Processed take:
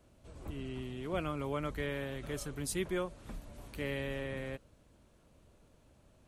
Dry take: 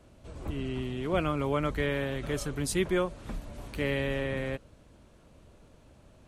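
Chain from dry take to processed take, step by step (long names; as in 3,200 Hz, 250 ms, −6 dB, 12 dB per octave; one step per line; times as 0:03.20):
high-shelf EQ 9,600 Hz +8 dB
level −7.5 dB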